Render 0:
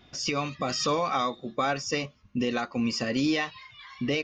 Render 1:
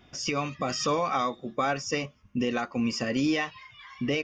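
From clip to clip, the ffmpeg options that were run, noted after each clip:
ffmpeg -i in.wav -af "equalizer=frequency=4100:width=5.9:gain=-13" out.wav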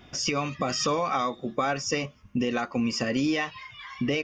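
ffmpeg -i in.wav -af "acompressor=threshold=-32dB:ratio=2,volume=5.5dB" out.wav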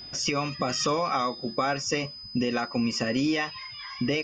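ffmpeg -i in.wav -af "aeval=exprs='val(0)+0.01*sin(2*PI*5000*n/s)':channel_layout=same" out.wav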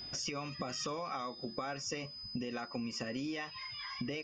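ffmpeg -i in.wav -af "acompressor=threshold=-34dB:ratio=4,volume=-3.5dB" out.wav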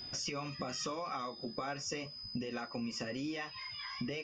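ffmpeg -i in.wav -af "flanger=delay=7.7:depth=6.7:regen=-57:speed=0.89:shape=triangular,volume=4dB" out.wav

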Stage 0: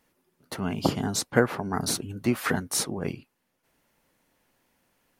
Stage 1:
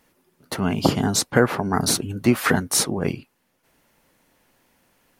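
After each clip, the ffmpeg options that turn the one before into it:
ffmpeg -i in.wav -af "alimiter=level_in=8dB:limit=-1dB:release=50:level=0:latency=1,volume=-1dB" out.wav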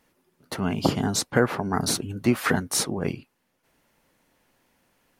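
ffmpeg -i in.wav -af "highshelf=frequency=9600:gain=-3.5,volume=-3.5dB" out.wav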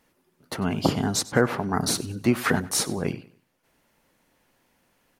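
ffmpeg -i in.wav -af "aecho=1:1:96|192|288:0.119|0.0404|0.0137" out.wav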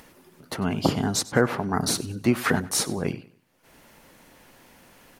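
ffmpeg -i in.wav -af "acompressor=mode=upward:threshold=-40dB:ratio=2.5" out.wav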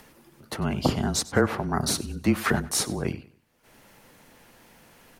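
ffmpeg -i in.wav -af "afreqshift=-26,volume=-1dB" out.wav

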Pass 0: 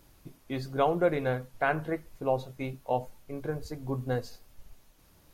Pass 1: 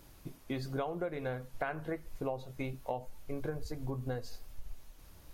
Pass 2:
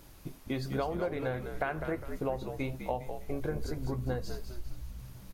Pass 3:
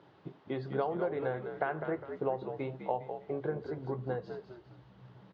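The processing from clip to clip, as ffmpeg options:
ffmpeg -i in.wav -af "asubboost=boost=2:cutoff=100,acompressor=threshold=-35dB:ratio=8,volume=2dB" out.wav
ffmpeg -i in.wav -filter_complex "[0:a]asplit=6[link_01][link_02][link_03][link_04][link_05][link_06];[link_02]adelay=203,afreqshift=-66,volume=-8dB[link_07];[link_03]adelay=406,afreqshift=-132,volume=-15.5dB[link_08];[link_04]adelay=609,afreqshift=-198,volume=-23.1dB[link_09];[link_05]adelay=812,afreqshift=-264,volume=-30.6dB[link_10];[link_06]adelay=1015,afreqshift=-330,volume=-38.1dB[link_11];[link_01][link_07][link_08][link_09][link_10][link_11]amix=inputs=6:normalize=0,volume=3dB" out.wav
ffmpeg -i in.wav -af "highpass=frequency=130:width=0.5412,highpass=frequency=130:width=1.3066,equalizer=frequency=240:width_type=q:width=4:gain=-7,equalizer=frequency=410:width_type=q:width=4:gain=5,equalizer=frequency=840:width_type=q:width=4:gain=4,equalizer=frequency=2400:width_type=q:width=4:gain=-9,lowpass=frequency=3200:width=0.5412,lowpass=frequency=3200:width=1.3066,volume=-1dB" out.wav

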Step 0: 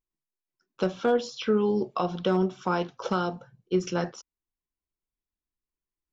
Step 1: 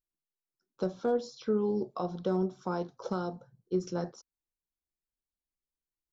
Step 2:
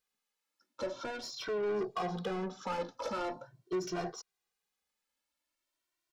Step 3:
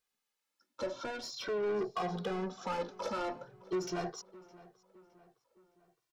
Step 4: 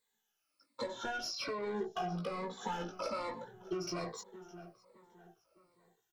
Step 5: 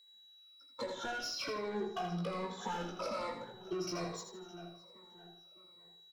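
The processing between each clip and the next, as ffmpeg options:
ffmpeg -i in.wav -af "firequalizer=gain_entry='entry(500,0);entry(2800,-17);entry(4000,-3)':delay=0.05:min_phase=1,volume=-5dB" out.wav
ffmpeg -i in.wav -filter_complex "[0:a]alimiter=limit=-23dB:level=0:latency=1:release=477,asplit=2[link_01][link_02];[link_02]highpass=frequency=720:poles=1,volume=25dB,asoftclip=type=tanh:threshold=-23dB[link_03];[link_01][link_03]amix=inputs=2:normalize=0,lowpass=frequency=4500:poles=1,volume=-6dB,asplit=2[link_04][link_05];[link_05]adelay=2,afreqshift=0.43[link_06];[link_04][link_06]amix=inputs=2:normalize=1,volume=-2.5dB" out.wav
ffmpeg -i in.wav -filter_complex "[0:a]asplit=2[link_01][link_02];[link_02]adelay=613,lowpass=frequency=3200:poles=1,volume=-20dB,asplit=2[link_03][link_04];[link_04]adelay=613,lowpass=frequency=3200:poles=1,volume=0.5,asplit=2[link_05][link_06];[link_06]adelay=613,lowpass=frequency=3200:poles=1,volume=0.5,asplit=2[link_07][link_08];[link_08]adelay=613,lowpass=frequency=3200:poles=1,volume=0.5[link_09];[link_01][link_03][link_05][link_07][link_09]amix=inputs=5:normalize=0" out.wav
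ffmpeg -i in.wav -filter_complex "[0:a]afftfilt=real='re*pow(10,13/40*sin(2*PI*(0.99*log(max(b,1)*sr/1024/100)/log(2)-(-1.2)*(pts-256)/sr)))':imag='im*pow(10,13/40*sin(2*PI*(0.99*log(max(b,1)*sr/1024/100)/log(2)-(-1.2)*(pts-256)/sr)))':win_size=1024:overlap=0.75,asplit=2[link_01][link_02];[link_02]adelay=18,volume=-4.5dB[link_03];[link_01][link_03]amix=inputs=2:normalize=0,acompressor=threshold=-35dB:ratio=4" out.wav
ffmpeg -i in.wav -filter_complex "[0:a]aeval=exprs='val(0)+0.000891*sin(2*PI*3900*n/s)':channel_layout=same,asplit=2[link_01][link_02];[link_02]asoftclip=type=hard:threshold=-40dB,volume=-6.5dB[link_03];[link_01][link_03]amix=inputs=2:normalize=0,aecho=1:1:81|162|243|324:0.422|0.139|0.0459|0.0152,volume=-3dB" out.wav

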